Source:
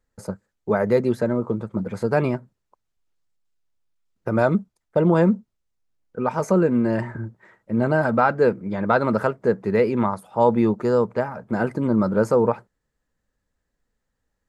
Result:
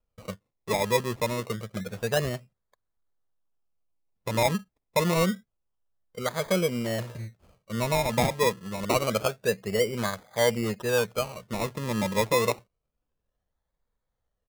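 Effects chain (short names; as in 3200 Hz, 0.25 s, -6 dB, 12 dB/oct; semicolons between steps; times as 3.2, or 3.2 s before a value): comb 1.7 ms, depth 60%; decimation with a swept rate 23×, swing 60% 0.27 Hz; gain -7.5 dB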